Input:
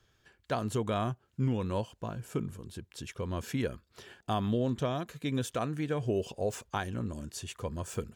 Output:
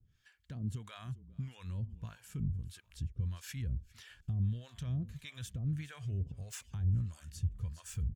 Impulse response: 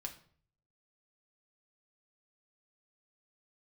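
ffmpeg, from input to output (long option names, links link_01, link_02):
-filter_complex "[0:a]asubboost=boost=7.5:cutoff=81,alimiter=level_in=4dB:limit=-24dB:level=0:latency=1:release=47,volume=-4dB,asplit=4[link_01][link_02][link_03][link_04];[link_02]adelay=403,afreqshift=-32,volume=-18.5dB[link_05];[link_03]adelay=806,afreqshift=-64,volume=-26.7dB[link_06];[link_04]adelay=1209,afreqshift=-96,volume=-34.9dB[link_07];[link_01][link_05][link_06][link_07]amix=inputs=4:normalize=0,acrossover=split=550[link_08][link_09];[link_08]aeval=exprs='val(0)*(1-1/2+1/2*cos(2*PI*1.6*n/s))':channel_layout=same[link_10];[link_09]aeval=exprs='val(0)*(1-1/2-1/2*cos(2*PI*1.6*n/s))':channel_layout=same[link_11];[link_10][link_11]amix=inputs=2:normalize=0,firequalizer=gain_entry='entry(170,0);entry(350,-16);entry(590,-19);entry(1800,-6)':delay=0.05:min_phase=1,volume=4.5dB"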